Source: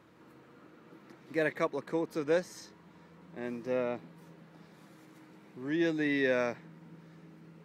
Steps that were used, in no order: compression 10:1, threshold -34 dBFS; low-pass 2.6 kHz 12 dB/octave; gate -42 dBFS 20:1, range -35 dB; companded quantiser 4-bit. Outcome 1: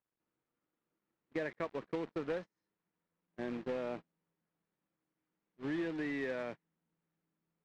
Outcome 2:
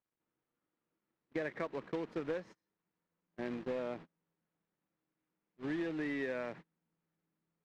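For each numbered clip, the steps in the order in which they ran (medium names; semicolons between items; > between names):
compression > companded quantiser > low-pass > gate; companded quantiser > low-pass > gate > compression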